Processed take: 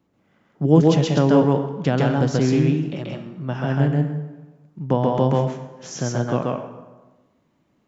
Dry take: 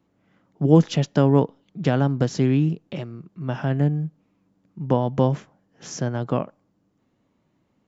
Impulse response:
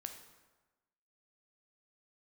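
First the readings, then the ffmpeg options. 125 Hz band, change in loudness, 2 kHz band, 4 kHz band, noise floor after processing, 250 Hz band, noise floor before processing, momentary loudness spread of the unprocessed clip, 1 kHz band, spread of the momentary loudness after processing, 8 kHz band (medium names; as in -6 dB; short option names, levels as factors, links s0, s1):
+1.5 dB, +2.0 dB, +4.0 dB, +3.5 dB, -66 dBFS, +2.5 dB, -69 dBFS, 16 LU, +3.5 dB, 15 LU, no reading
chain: -filter_complex "[0:a]asplit=2[s0][s1];[s1]lowshelf=f=190:g=-6.5[s2];[1:a]atrim=start_sample=2205,adelay=134[s3];[s2][s3]afir=irnorm=-1:irlink=0,volume=1.68[s4];[s0][s4]amix=inputs=2:normalize=0"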